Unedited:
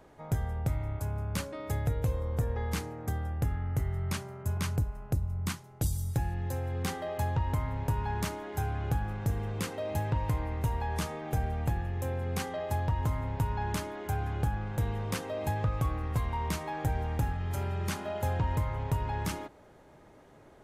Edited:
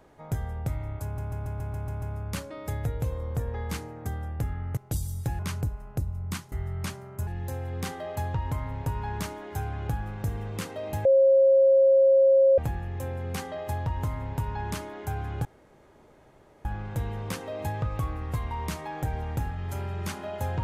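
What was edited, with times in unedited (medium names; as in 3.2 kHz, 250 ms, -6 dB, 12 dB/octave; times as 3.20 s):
1.04 s: stutter 0.14 s, 8 plays
3.79–4.54 s: swap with 5.67–6.29 s
10.07–11.60 s: bleep 540 Hz -15 dBFS
14.47 s: insert room tone 1.20 s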